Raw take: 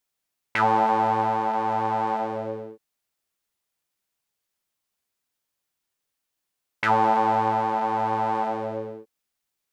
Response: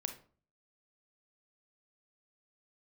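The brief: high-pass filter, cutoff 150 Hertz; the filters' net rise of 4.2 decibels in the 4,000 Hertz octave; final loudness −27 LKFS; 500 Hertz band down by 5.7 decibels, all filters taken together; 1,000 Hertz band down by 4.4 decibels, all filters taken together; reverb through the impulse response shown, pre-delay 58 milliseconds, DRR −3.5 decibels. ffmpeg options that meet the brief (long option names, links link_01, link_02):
-filter_complex "[0:a]highpass=150,equalizer=frequency=500:width_type=o:gain=-6,equalizer=frequency=1000:width_type=o:gain=-3.5,equalizer=frequency=4000:width_type=o:gain=6,asplit=2[link_01][link_02];[1:a]atrim=start_sample=2205,adelay=58[link_03];[link_02][link_03]afir=irnorm=-1:irlink=0,volume=4dB[link_04];[link_01][link_04]amix=inputs=2:normalize=0,volume=-6dB"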